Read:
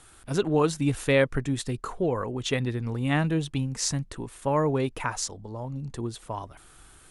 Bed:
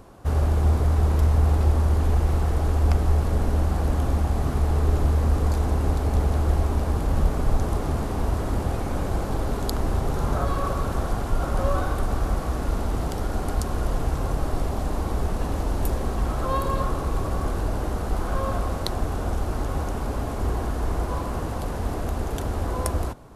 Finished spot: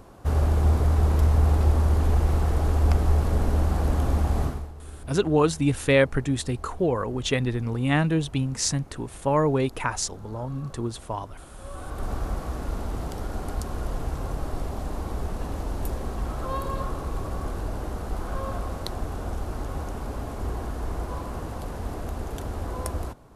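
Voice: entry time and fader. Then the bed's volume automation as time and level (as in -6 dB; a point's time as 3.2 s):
4.80 s, +2.5 dB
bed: 4.44 s -0.5 dB
4.74 s -20.5 dB
11.57 s -20.5 dB
12.06 s -5 dB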